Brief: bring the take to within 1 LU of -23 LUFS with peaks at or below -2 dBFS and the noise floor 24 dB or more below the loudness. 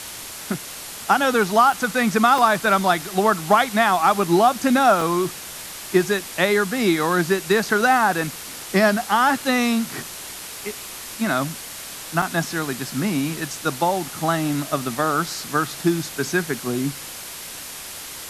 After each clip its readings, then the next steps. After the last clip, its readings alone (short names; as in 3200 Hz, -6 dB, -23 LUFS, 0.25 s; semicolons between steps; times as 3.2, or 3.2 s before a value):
dropouts 4; longest dropout 3.3 ms; noise floor -35 dBFS; noise floor target -45 dBFS; loudness -20.5 LUFS; peak -3.0 dBFS; loudness target -23.0 LUFS
-> interpolate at 1.72/2.38/5.01/12.22, 3.3 ms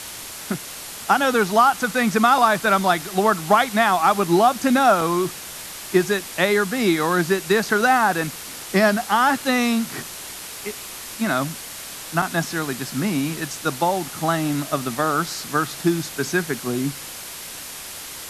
dropouts 0; noise floor -35 dBFS; noise floor target -45 dBFS
-> denoiser 10 dB, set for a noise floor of -35 dBFS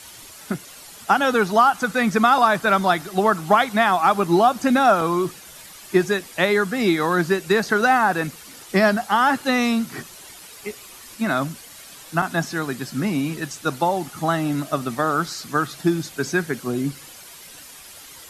noise floor -43 dBFS; noise floor target -45 dBFS
-> denoiser 6 dB, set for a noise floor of -43 dBFS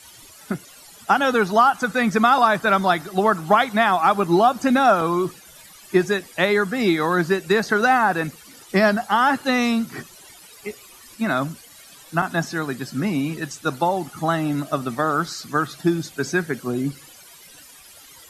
noise floor -46 dBFS; loudness -20.5 LUFS; peak -3.5 dBFS; loudness target -23.0 LUFS
-> gain -2.5 dB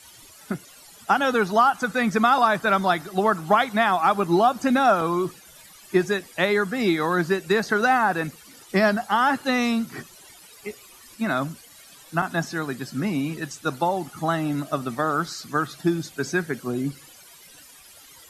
loudness -23.0 LUFS; peak -6.0 dBFS; noise floor -49 dBFS